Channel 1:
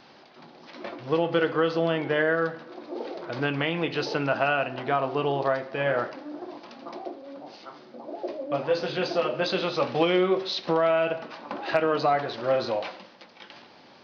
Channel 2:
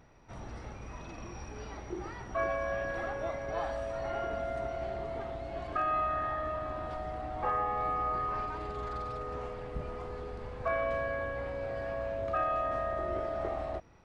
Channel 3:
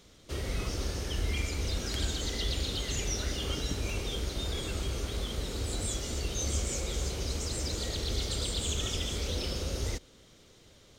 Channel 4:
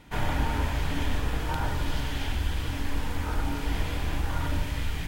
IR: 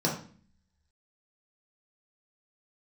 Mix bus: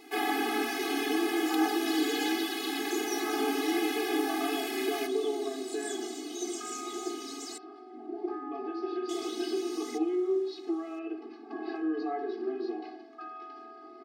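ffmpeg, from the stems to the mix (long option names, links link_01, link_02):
-filter_complex "[0:a]equalizer=frequency=360:width=1.4:gain=14.5,acompressor=threshold=-18dB:ratio=6,volume=-16dB,asplit=2[link_01][link_02];[link_02]volume=-10dB[link_03];[1:a]adelay=850,volume=-11.5dB[link_04];[2:a]volume=-1.5dB,asplit=3[link_05][link_06][link_07];[link_05]atrim=end=7.58,asetpts=PTS-STARTPTS,afade=type=out:start_time=7.576:duration=0.004:curve=hsin[link_08];[link_06]atrim=start=7.58:end=9.09,asetpts=PTS-STARTPTS,volume=0[link_09];[link_07]atrim=start=9.09,asetpts=PTS-STARTPTS,afade=type=in:duration=0.004:curve=hsin[link_10];[link_08][link_09][link_10]concat=n=3:v=0:a=1[link_11];[3:a]highshelf=frequency=7900:gain=8.5,aecho=1:1:2.4:0.56,volume=1dB,asplit=2[link_12][link_13];[link_13]volume=-16.5dB[link_14];[4:a]atrim=start_sample=2205[link_15];[link_03][link_14]amix=inputs=2:normalize=0[link_16];[link_16][link_15]afir=irnorm=-1:irlink=0[link_17];[link_01][link_04][link_11][link_12][link_17]amix=inputs=5:normalize=0,afftfilt=real='re*eq(mod(floor(b*sr/1024/220),2),1)':imag='im*eq(mod(floor(b*sr/1024/220),2),1)':win_size=1024:overlap=0.75"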